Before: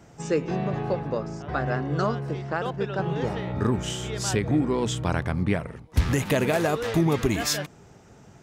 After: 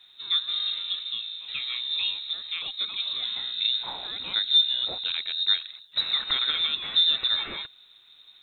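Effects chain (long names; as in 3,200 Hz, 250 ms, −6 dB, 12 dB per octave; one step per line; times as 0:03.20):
thirty-one-band graphic EQ 100 Hz −6 dB, 200 Hz +10 dB, 315 Hz +12 dB, 800 Hz −11 dB, 2,500 Hz +4 dB
voice inversion scrambler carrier 3,900 Hz
high-frequency loss of the air 120 metres
bit-depth reduction 12 bits, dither none
level −4 dB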